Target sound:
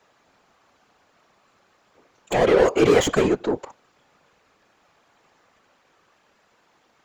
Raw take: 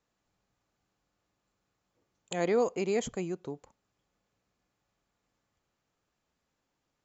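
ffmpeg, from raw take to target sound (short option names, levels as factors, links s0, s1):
-filter_complex "[0:a]asplit=3[s0][s1][s2];[s0]afade=t=out:st=2.81:d=0.02[s3];[s1]acontrast=87,afade=t=in:st=2.81:d=0.02,afade=t=out:st=3.27:d=0.02[s4];[s2]afade=t=in:st=3.27:d=0.02[s5];[s3][s4][s5]amix=inputs=3:normalize=0,asplit=2[s6][s7];[s7]highpass=f=720:p=1,volume=28.2,asoftclip=type=tanh:threshold=0.266[s8];[s6][s8]amix=inputs=2:normalize=0,lowpass=f=2000:p=1,volume=0.501,afftfilt=real='hypot(re,im)*cos(2*PI*random(0))':imag='hypot(re,im)*sin(2*PI*random(1))':win_size=512:overlap=0.75,volume=2.51"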